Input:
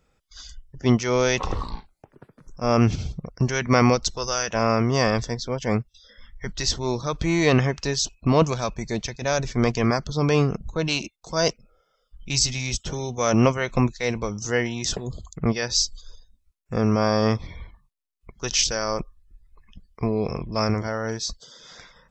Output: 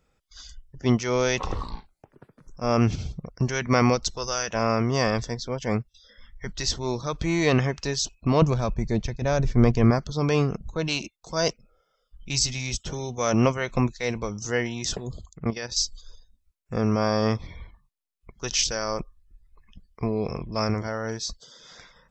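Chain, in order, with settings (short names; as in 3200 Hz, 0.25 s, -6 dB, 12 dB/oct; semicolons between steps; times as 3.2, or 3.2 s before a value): 8.42–9.99 tilt -2.5 dB/oct; 15.25–15.8 level quantiser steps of 10 dB; gain -2.5 dB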